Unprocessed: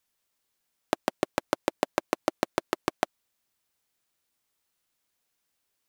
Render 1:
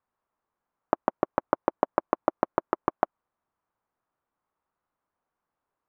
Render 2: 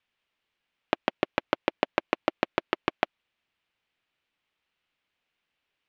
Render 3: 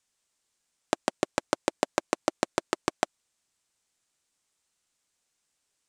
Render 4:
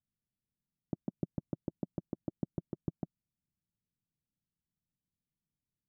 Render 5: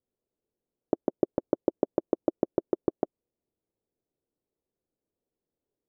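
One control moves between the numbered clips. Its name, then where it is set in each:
resonant low-pass, frequency: 1.1 kHz, 2.8 kHz, 8 kHz, 170 Hz, 430 Hz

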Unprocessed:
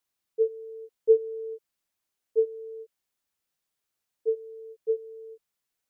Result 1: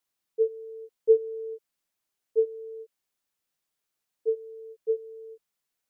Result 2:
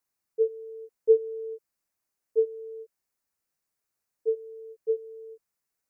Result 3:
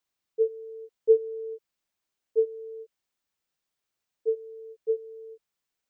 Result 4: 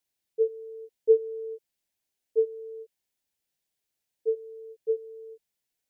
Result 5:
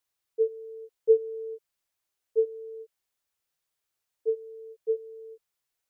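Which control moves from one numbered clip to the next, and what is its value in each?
peaking EQ, frequency: 66 Hz, 3.3 kHz, 12 kHz, 1.2 kHz, 230 Hz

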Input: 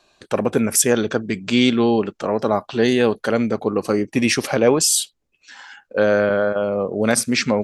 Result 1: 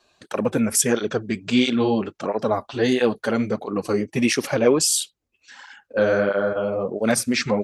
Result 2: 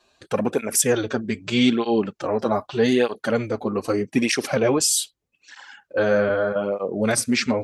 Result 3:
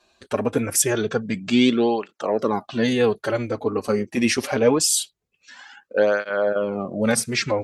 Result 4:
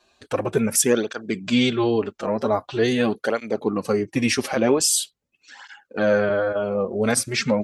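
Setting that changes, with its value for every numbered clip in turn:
cancelling through-zero flanger, nulls at: 1.5 Hz, 0.81 Hz, 0.24 Hz, 0.44 Hz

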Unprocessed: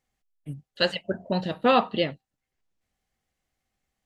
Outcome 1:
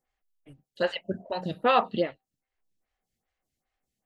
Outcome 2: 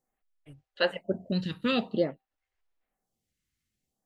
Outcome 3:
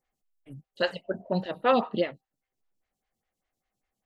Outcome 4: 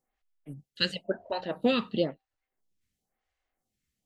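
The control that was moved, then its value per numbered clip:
lamp-driven phase shifter, rate: 2.5 Hz, 0.5 Hz, 5 Hz, 0.98 Hz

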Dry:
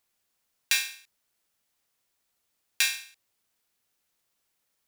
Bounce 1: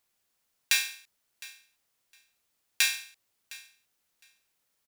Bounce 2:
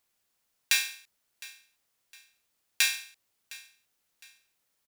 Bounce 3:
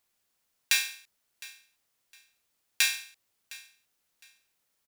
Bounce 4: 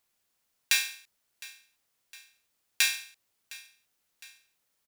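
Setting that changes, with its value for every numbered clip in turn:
feedback delay, feedback: 15%, 35%, 24%, 54%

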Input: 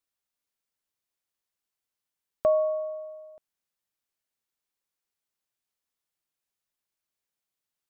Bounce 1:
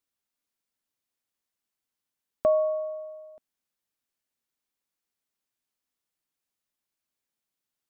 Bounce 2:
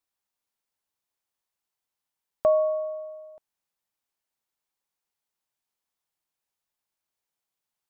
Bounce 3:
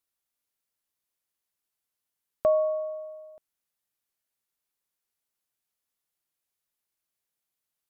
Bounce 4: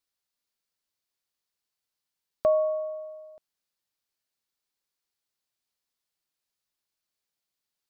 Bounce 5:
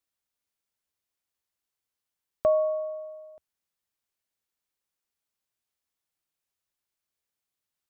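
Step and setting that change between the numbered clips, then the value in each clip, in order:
peaking EQ, frequency: 250 Hz, 870 Hz, 12 kHz, 4.5 kHz, 76 Hz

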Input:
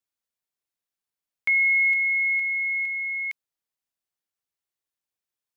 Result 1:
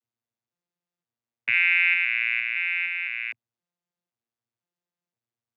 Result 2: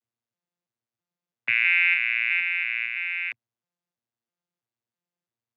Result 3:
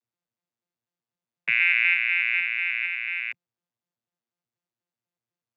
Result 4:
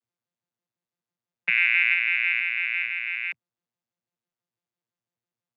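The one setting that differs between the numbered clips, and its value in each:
vocoder on a broken chord, a note every: 512 ms, 329 ms, 123 ms, 83 ms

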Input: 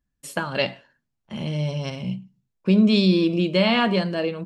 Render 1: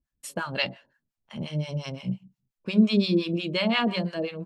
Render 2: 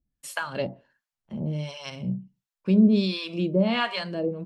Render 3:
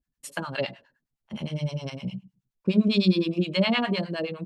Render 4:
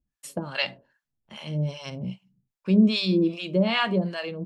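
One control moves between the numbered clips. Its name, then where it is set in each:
harmonic tremolo, rate: 5.7 Hz, 1.4 Hz, 9.7 Hz, 2.5 Hz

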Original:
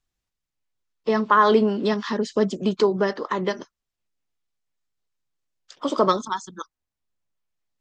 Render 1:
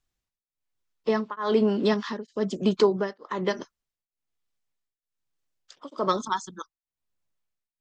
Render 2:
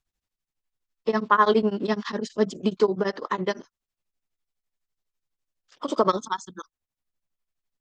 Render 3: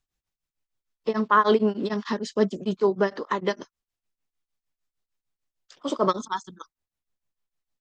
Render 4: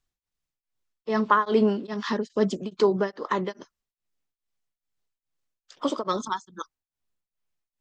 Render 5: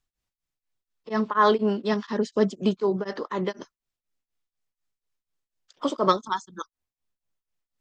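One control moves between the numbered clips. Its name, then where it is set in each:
tremolo of two beating tones, nulls at: 1.1 Hz, 12 Hz, 6.6 Hz, 2.4 Hz, 4.1 Hz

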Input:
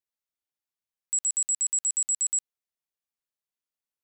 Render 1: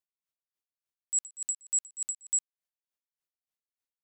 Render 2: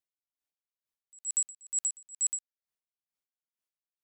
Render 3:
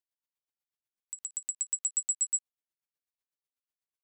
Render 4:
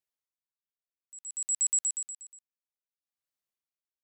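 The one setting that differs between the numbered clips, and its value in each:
logarithmic tremolo, rate: 3.4 Hz, 2.2 Hz, 8.1 Hz, 0.59 Hz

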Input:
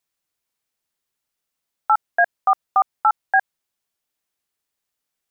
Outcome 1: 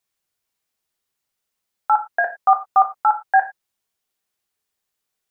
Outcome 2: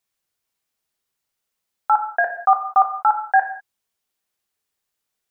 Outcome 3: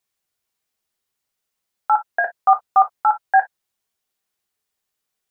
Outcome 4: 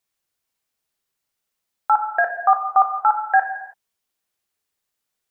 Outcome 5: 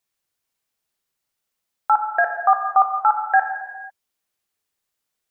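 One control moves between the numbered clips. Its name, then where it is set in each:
gated-style reverb, gate: 130 ms, 220 ms, 80 ms, 350 ms, 520 ms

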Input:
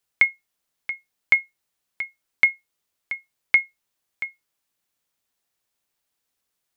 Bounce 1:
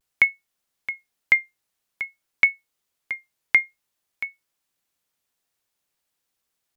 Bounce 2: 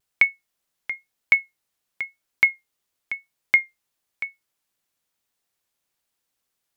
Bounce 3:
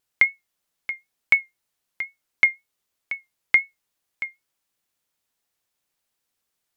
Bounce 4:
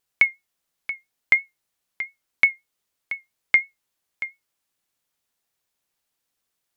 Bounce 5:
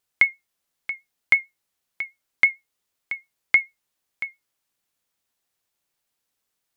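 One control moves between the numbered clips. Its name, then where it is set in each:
vibrato, rate: 0.52 Hz, 1 Hz, 3.9 Hz, 5.8 Hz, 9 Hz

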